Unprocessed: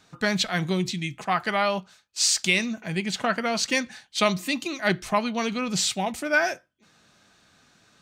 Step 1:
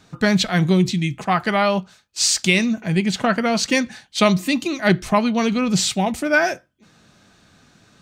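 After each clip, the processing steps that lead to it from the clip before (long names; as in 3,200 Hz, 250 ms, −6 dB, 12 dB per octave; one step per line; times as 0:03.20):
low-shelf EQ 410 Hz +8 dB
level +3.5 dB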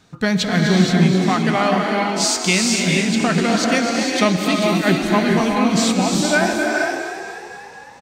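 on a send: echo with shifted repeats 251 ms, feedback 60%, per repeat +42 Hz, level −9 dB
on the sum: reverb whose tail is shaped and stops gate 480 ms rising, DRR 0.5 dB
level −1.5 dB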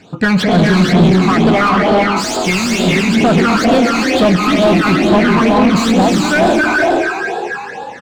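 all-pass phaser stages 12, 2.2 Hz, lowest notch 550–2,000 Hz
mid-hump overdrive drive 27 dB, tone 1,000 Hz, clips at −2.5 dBFS
level +2 dB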